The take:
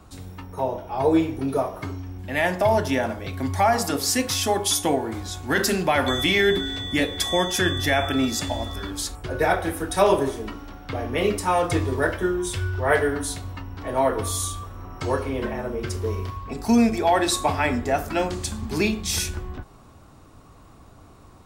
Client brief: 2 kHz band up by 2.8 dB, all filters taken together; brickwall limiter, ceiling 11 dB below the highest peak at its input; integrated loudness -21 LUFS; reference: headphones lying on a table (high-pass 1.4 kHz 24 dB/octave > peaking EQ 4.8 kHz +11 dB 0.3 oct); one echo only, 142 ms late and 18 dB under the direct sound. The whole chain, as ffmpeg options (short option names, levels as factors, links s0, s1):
-af "equalizer=f=2000:t=o:g=4,alimiter=limit=0.168:level=0:latency=1,highpass=f=1400:w=0.5412,highpass=f=1400:w=1.3066,equalizer=f=4800:t=o:w=0.3:g=11,aecho=1:1:142:0.126,volume=2.24"